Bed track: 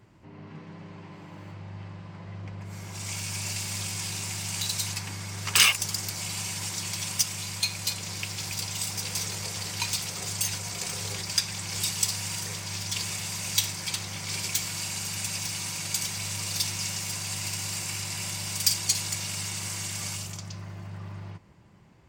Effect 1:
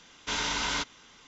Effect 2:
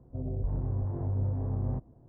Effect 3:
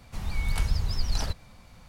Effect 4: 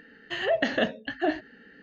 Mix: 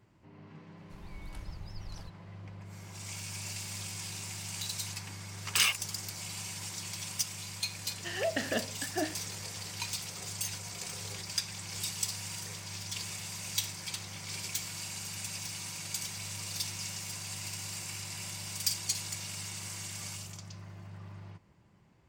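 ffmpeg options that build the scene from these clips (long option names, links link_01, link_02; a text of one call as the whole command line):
ffmpeg -i bed.wav -i cue0.wav -i cue1.wav -i cue2.wav -i cue3.wav -filter_complex "[0:a]volume=-7.5dB[link_01];[3:a]atrim=end=1.88,asetpts=PTS-STARTPTS,volume=-18dB,afade=type=in:duration=0.004:curve=hsin,afade=type=out:start_time=1.876:duration=0.004:curve=hsin,adelay=770[link_02];[4:a]atrim=end=1.82,asetpts=PTS-STARTPTS,volume=-7.5dB,afade=type=in:duration=0.004:curve=hsin,afade=type=out:start_time=1.816:duration=0.004:curve=hsin,adelay=7740[link_03];[link_01][link_02][link_03]amix=inputs=3:normalize=0" out.wav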